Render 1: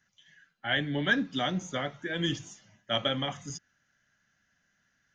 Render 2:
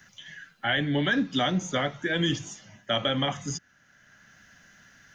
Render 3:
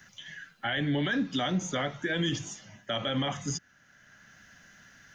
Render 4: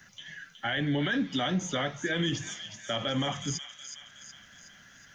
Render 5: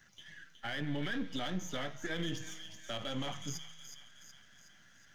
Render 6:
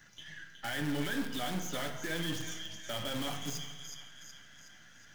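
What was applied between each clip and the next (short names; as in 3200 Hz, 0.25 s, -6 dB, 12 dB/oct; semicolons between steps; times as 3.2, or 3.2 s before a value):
limiter -20 dBFS, peak gain reduction 7 dB; three-band squash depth 40%; gain +5.5 dB
limiter -21 dBFS, peak gain reduction 7.5 dB
thin delay 0.369 s, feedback 53%, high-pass 2100 Hz, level -7 dB
half-wave gain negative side -7 dB; resonator 160 Hz, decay 1.6 s, mix 60%; gain +1.5 dB
in parallel at -4 dB: wrapped overs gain 34.5 dB; on the sum: FDN reverb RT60 1.3 s, low-frequency decay 1×, high-frequency decay 0.65×, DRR 6 dB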